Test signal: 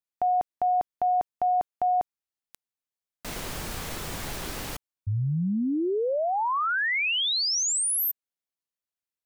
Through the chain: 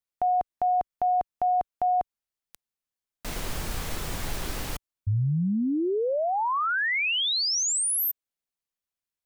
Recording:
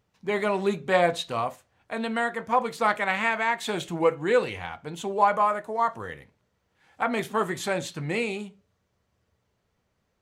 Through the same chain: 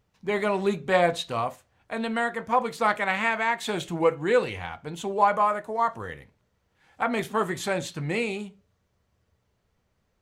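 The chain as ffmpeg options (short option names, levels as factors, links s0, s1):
-af "lowshelf=f=63:g=9"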